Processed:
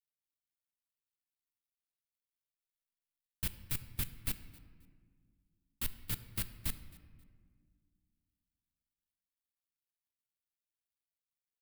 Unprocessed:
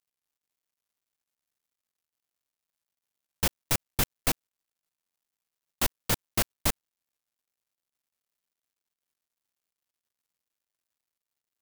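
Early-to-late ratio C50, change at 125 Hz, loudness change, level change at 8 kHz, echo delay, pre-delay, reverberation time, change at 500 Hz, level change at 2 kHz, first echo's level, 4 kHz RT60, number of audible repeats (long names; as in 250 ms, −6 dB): 12.5 dB, −8.0 dB, −10.5 dB, −12.5 dB, 267 ms, 3 ms, 1.8 s, −21.5 dB, −13.5 dB, −23.0 dB, 1.1 s, 2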